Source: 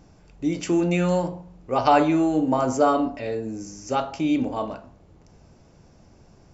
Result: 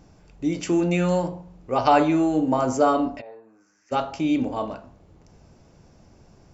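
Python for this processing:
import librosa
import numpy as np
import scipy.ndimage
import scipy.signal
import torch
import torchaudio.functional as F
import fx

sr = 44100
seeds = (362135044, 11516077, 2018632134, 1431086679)

y = fx.bandpass_q(x, sr, hz=fx.line((3.2, 770.0), (3.91, 1900.0)), q=4.2, at=(3.2, 3.91), fade=0.02)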